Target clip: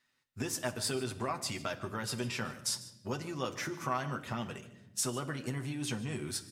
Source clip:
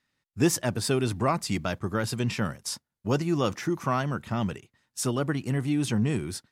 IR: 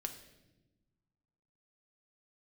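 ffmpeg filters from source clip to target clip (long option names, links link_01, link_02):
-filter_complex "[0:a]acompressor=threshold=-30dB:ratio=6,lowshelf=frequency=390:gain=-9,aecho=1:1:149:0.126,asplit=2[link_01][link_02];[1:a]atrim=start_sample=2205,adelay=8[link_03];[link_02][link_03]afir=irnorm=-1:irlink=0,volume=-2.5dB[link_04];[link_01][link_04]amix=inputs=2:normalize=0"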